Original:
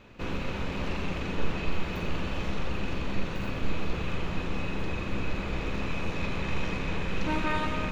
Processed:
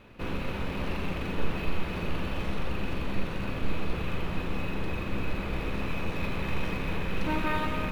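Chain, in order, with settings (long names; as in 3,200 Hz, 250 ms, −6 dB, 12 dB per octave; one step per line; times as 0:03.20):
linearly interpolated sample-rate reduction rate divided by 3×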